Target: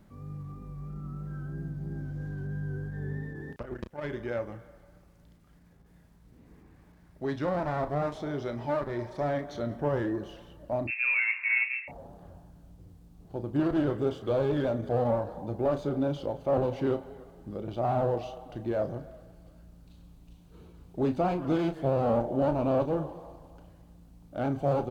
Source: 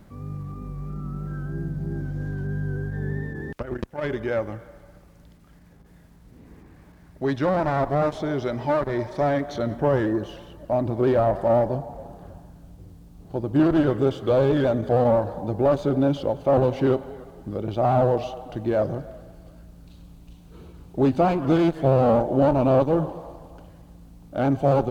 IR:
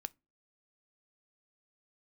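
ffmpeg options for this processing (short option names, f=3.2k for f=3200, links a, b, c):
-filter_complex "[0:a]asettb=1/sr,asplit=3[a][b][c];[a]atrim=end=10.874[d];[b]atrim=start=10.87:end=11.88,asetpts=PTS-STARTPTS,afade=t=in:d=0.004:c=qsin,afade=t=out:st=1.006:d=0.004:c=qsin,lowpass=f=2.4k:t=q:w=0.5098,lowpass=f=2.4k:t=q:w=0.6013,lowpass=f=2.4k:t=q:w=0.9,lowpass=f=2.4k:t=q:w=2.563,afreqshift=-2800[e];[c]atrim=start=11.876[f];[d][e]acrossfade=d=0.004:c1=hsin:c2=qsin[g];[g][f]acrossfade=d=0.004:c1=qsin:c2=hsin,asplit=2[h][i];[i]adelay=34,volume=-10dB[j];[h][j]amix=inputs=2:normalize=0,volume=-8dB"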